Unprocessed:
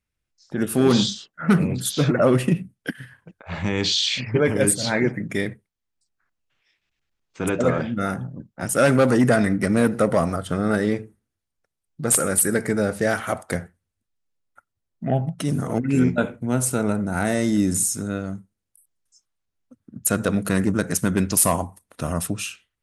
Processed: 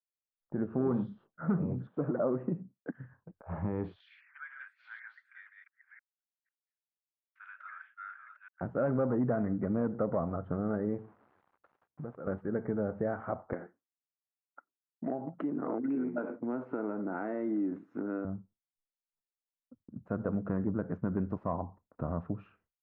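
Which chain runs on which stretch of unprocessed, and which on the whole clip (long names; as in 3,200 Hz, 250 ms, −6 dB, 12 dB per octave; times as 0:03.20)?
0:01.87–0:02.94: band-pass filter 200–2,200 Hz + high-frequency loss of the air 160 metres
0:04.00–0:08.61: delay that plays each chunk backwards 498 ms, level −7 dB + elliptic high-pass filter 1,500 Hz, stop band 70 dB + high-shelf EQ 2,200 Hz +10.5 dB
0:10.98–0:12.27: spike at every zero crossing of −23 dBFS + high-pass filter 76 Hz + downward compressor 5 to 1, threshold −31 dBFS
0:13.53–0:18.25: downward compressor 5 to 1, threshold −26 dBFS + high-pass with resonance 300 Hz, resonance Q 3.1 + parametric band 2,500 Hz +13.5 dB 2.5 octaves
whole clip: downward compressor 2 to 1, threshold −25 dBFS; downward expander −48 dBFS; low-pass filter 1,200 Hz 24 dB per octave; level −6 dB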